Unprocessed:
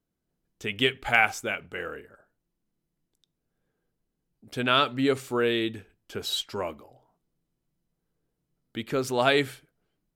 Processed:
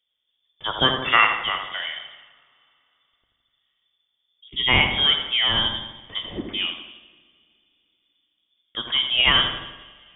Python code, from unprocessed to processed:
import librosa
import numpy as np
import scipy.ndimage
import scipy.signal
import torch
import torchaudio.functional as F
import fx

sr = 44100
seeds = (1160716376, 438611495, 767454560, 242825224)

p1 = fx.rev_double_slope(x, sr, seeds[0], early_s=0.93, late_s=3.1, knee_db=-19, drr_db=8.0)
p2 = fx.freq_invert(p1, sr, carrier_hz=3500)
p3 = p2 + fx.echo_filtered(p2, sr, ms=83, feedback_pct=58, hz=1800.0, wet_db=-6.0, dry=0)
p4 = fx.spec_box(p3, sr, start_s=4.49, length_s=0.2, low_hz=440.0, high_hz=1900.0, gain_db=-21)
y = p4 * 10.0 ** (4.0 / 20.0)